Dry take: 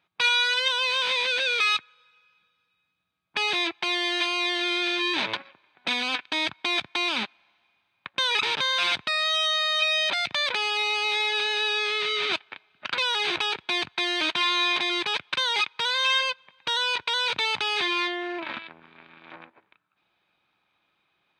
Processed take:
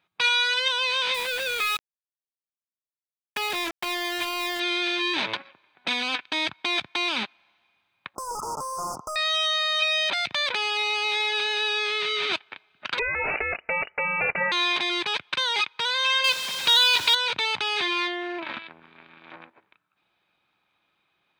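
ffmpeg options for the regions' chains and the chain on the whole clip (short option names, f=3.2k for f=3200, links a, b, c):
-filter_complex "[0:a]asettb=1/sr,asplit=3[a][b][c];[a]atrim=end=1.144[d];[b]atrim=start=1.14:end=4.6,asetpts=PTS-STARTPTS,afade=t=in:d=0.004:c=qsin,afade=t=out:st=3.456:d=0.004:c=qsin,highshelf=f=3.4k:g=-9,acrusher=bits=4:mix=0:aa=0.5[e];[c]atrim=start=4.596[f];[d][e]acrossfade=d=0.004:c1=hsin:c2=qsin[g];[g][f]acrossfade=d=0.004:c1=qsin:c2=hsin,asettb=1/sr,asplit=3[h][i][j];[h]atrim=end=8.154[k];[i]atrim=start=8.15:end=9.16,asetpts=PTS-STARTPTS,afade=t=in:d=0.004:c=qsin,afade=t=out:st=1.006:d=0.004:c=qsin,acompressor=threshold=-30dB:ratio=2:attack=3.2:release=140:knee=1:detection=peak,asplit=2[l][m];[m]highpass=f=720:p=1,volume=21dB,asoftclip=type=tanh:threshold=-14.5dB[n];[l][n]amix=inputs=2:normalize=0,lowpass=f=4.4k:p=1,volume=-6dB,asuperstop=centerf=2600:order=20:qfactor=0.67[o];[j]atrim=start=9.156[p];[k][o]acrossfade=d=0.004:c1=hsin:c2=qsin[q];[q][p]acrossfade=d=0.004:c1=qsin:c2=hsin,asettb=1/sr,asplit=3[r][s][t];[r]atrim=end=12.994[u];[s]atrim=start=12.99:end=14.52,asetpts=PTS-STARTPTS,afade=t=in:d=0.004:c=qsin,afade=t=out:st=1.526:d=0.004:c=qsin,equalizer=f=620:w=2.4:g=13.5,lowpass=f=2.6k:t=q:w=0.5098,lowpass=f=2.6k:t=q:w=0.6013,lowpass=f=2.6k:t=q:w=0.9,lowpass=f=2.6k:t=q:w=2.563,afreqshift=-3000[v];[t]atrim=start=14.516[w];[u][v]acrossfade=d=0.004:c1=hsin:c2=qsin[x];[x][w]acrossfade=d=0.004:c1=qsin:c2=hsin,asettb=1/sr,asplit=3[y][z][aa];[y]atrim=end=16.244[ab];[z]atrim=start=16.24:end=17.15,asetpts=PTS-STARTPTS,afade=t=in:d=0.004:c=qsin,afade=t=out:st=0.906:d=0.004:c=qsin,aeval=exprs='val(0)+0.5*0.0355*sgn(val(0))':c=same,highpass=110,equalizer=f=4.4k:t=o:w=1.3:g=8.5[ac];[aa]atrim=start=17.146[ad];[ab][ac]acrossfade=d=0.004:c1=hsin:c2=qsin[ae];[ae][ad]acrossfade=d=0.004:c1=qsin:c2=hsin"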